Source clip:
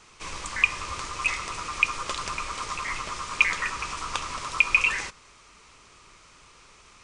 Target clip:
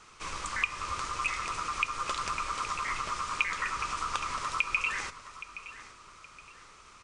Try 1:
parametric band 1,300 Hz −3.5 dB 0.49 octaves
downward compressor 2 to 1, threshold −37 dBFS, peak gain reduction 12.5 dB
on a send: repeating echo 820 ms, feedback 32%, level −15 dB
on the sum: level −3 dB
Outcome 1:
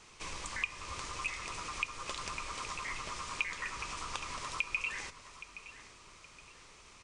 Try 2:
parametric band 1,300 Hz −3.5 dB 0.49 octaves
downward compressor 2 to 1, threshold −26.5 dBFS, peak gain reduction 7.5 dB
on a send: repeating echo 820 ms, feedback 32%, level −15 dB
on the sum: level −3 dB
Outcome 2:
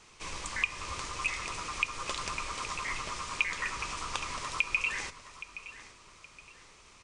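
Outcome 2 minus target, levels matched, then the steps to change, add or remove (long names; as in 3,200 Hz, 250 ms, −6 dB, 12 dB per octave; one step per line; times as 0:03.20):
1,000 Hz band −4.0 dB
change: parametric band 1,300 Hz +6.5 dB 0.49 octaves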